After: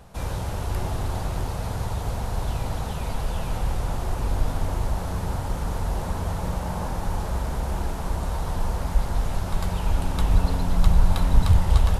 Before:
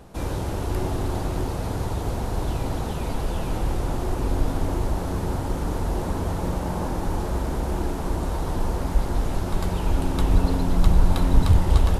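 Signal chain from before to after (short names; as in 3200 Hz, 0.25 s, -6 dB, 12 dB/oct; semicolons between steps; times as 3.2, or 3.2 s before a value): bell 320 Hz -11 dB 0.87 oct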